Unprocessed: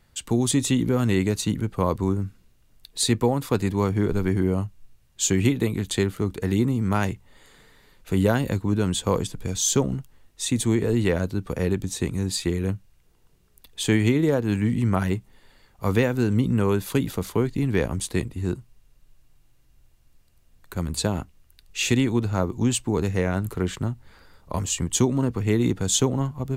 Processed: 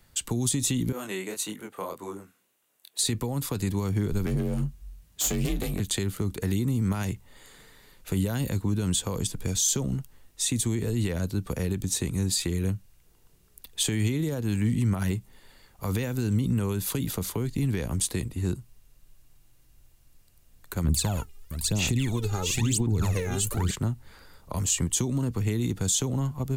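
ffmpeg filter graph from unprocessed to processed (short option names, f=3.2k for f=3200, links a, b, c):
-filter_complex "[0:a]asettb=1/sr,asplit=3[a][b][c];[a]atrim=end=0.924[d];[b]atrim=start=0.92:end=2.99,asetpts=PTS-STARTPTS,afade=t=in:d=0.004:c=qsin,afade=t=out:st=2.066:d=0.004:c=qsin,highpass=430,equalizer=f=4.9k:w=1.9:g=-7,flanger=delay=19:depth=7.7:speed=1.7[e];[c]atrim=start=2.986[f];[d][e]acrossfade=d=0.004:c1=hsin:c2=qsin[g];[g][f]acrossfade=d=0.004:c1=qsin:c2=hsin,asettb=1/sr,asplit=3[h][i][j];[h]atrim=end=4.264[k];[i]atrim=start=4.26:end=5.8,asetpts=PTS-STARTPTS,afade=t=in:d=0.004:c=qsin,afade=t=out:st=1.536:d=0.004:c=qsin,aeval=exprs='clip(val(0),-1,0.0335)':c=same,afreqshift=39,asplit=2[l][m];[m]adelay=22,volume=-12dB[n];[l][n]amix=inputs=2:normalize=0,atrim=end_sample=67914[o];[j]atrim=start=5.796[p];[k][o]acrossfade=d=0.004:c1=hsin:c2=qsin[q];[q][p]acrossfade=d=0.004:c1=qsin:c2=hsin,asettb=1/sr,asplit=3[r][s][t];[r]atrim=end=20.844[u];[s]atrim=start=20.84:end=23.71,asetpts=PTS-STARTPTS,afade=t=in:d=0.004:c=qsin,afade=t=out:st=2.866:d=0.004:c=qsin,aecho=1:1:667:0.501,atrim=end_sample=126567,aphaser=in_gain=1:out_gain=1:delay=2.5:decay=0.75:speed=1:type=sinusoidal[v];[t]atrim=start=23.706[w];[u][v]acrossfade=d=0.004:c1=hsin:c2=qsin[x];[x][w]acrossfade=d=0.004:c1=qsin:c2=hsin,highshelf=f=6.2k:g=8,alimiter=limit=-15dB:level=0:latency=1:release=55,acrossover=split=210|3000[y][z][aa];[z]acompressor=threshold=-32dB:ratio=6[ab];[y][ab][aa]amix=inputs=3:normalize=0"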